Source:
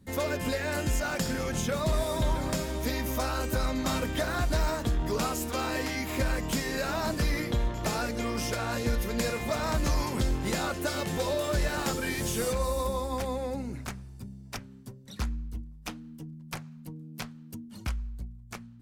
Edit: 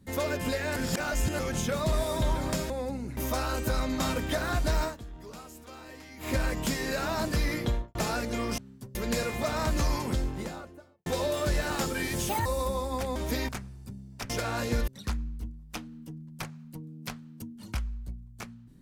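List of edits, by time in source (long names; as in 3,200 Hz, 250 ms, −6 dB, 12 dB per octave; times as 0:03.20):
0:00.76–0:01.39: reverse
0:02.70–0:03.03: swap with 0:13.35–0:13.82
0:04.70–0:06.16: duck −15.5 dB, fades 0.13 s
0:07.54–0:07.81: fade out and dull
0:08.44–0:09.02: swap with 0:14.63–0:15.00
0:09.94–0:11.13: fade out and dull
0:12.36–0:12.65: play speed 174%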